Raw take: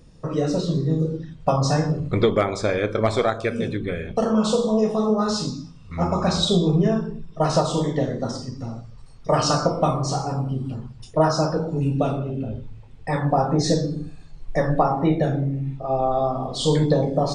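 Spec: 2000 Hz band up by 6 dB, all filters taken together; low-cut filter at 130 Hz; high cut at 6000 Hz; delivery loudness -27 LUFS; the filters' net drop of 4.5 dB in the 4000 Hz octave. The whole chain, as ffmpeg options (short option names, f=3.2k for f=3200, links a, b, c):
-af "highpass=130,lowpass=6k,equalizer=f=2k:t=o:g=9,equalizer=f=4k:t=o:g=-6.5,volume=-4.5dB"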